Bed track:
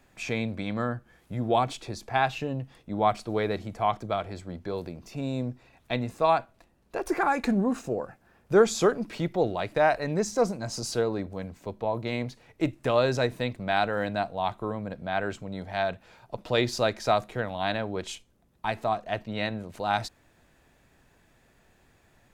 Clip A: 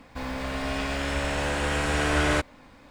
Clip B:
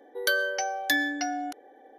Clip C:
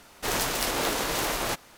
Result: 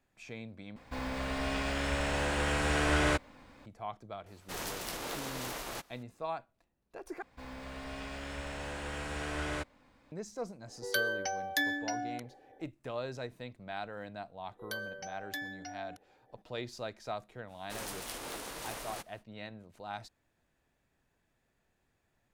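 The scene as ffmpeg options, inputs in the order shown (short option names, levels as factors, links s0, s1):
-filter_complex "[1:a]asplit=2[s0][s1];[3:a]asplit=2[s2][s3];[2:a]asplit=2[s4][s5];[0:a]volume=0.178[s6];[s3]equalizer=f=9300:t=o:w=0.23:g=6.5[s7];[s6]asplit=3[s8][s9][s10];[s8]atrim=end=0.764[s11];[s0]atrim=end=2.9,asetpts=PTS-STARTPTS,volume=0.596[s12];[s9]atrim=start=3.656:end=7.224[s13];[s1]atrim=end=2.9,asetpts=PTS-STARTPTS,volume=0.224[s14];[s10]atrim=start=10.116[s15];[s2]atrim=end=1.77,asetpts=PTS-STARTPTS,volume=0.251,afade=t=in:d=0.004:c=hsin,afade=t=out:st=1.766:d=0.004:c=hsin,adelay=4260[s16];[s4]atrim=end=1.98,asetpts=PTS-STARTPTS,volume=0.501,afade=t=in:d=0.004:c=hsin,afade=t=out:st=1.976:d=0.004:c=hsin,adelay=10670[s17];[s5]atrim=end=1.98,asetpts=PTS-STARTPTS,volume=0.178,afade=t=in:d=0.004:c=hsin,afade=t=out:st=1.976:d=0.004:c=hsin,adelay=636804S[s18];[s7]atrim=end=1.77,asetpts=PTS-STARTPTS,volume=0.178,afade=t=in:d=0.05,afade=t=out:st=1.72:d=0.05,adelay=17470[s19];[s11][s12]acrossfade=d=0.004:c1=hsin:c2=hsin[s20];[s20][s13]acrossfade=d=0.004:c1=hsin:c2=hsin[s21];[s21][s14]acrossfade=d=0.004:c1=hsin:c2=hsin[s22];[s22][s15]acrossfade=d=0.004:c1=hsin:c2=hsin[s23];[s23][s16][s17][s18][s19]amix=inputs=5:normalize=0"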